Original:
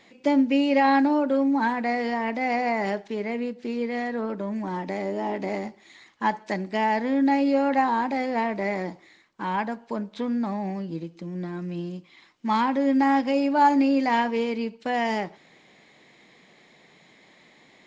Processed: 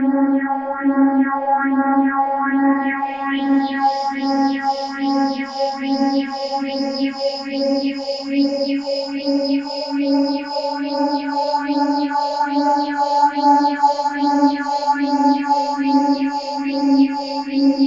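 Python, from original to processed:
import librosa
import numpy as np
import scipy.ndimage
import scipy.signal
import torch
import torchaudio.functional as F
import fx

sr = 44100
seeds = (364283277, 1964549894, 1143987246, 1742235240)

y = fx.paulstretch(x, sr, seeds[0], factor=19.0, window_s=0.5, from_s=12.92)
y = fx.filter_sweep_lowpass(y, sr, from_hz=1500.0, to_hz=5300.0, start_s=2.52, end_s=4.0, q=5.0)
y = fx.phaser_stages(y, sr, stages=4, low_hz=250.0, high_hz=3300.0, hz=1.2, feedback_pct=45)
y = y * librosa.db_to_amplitude(3.5)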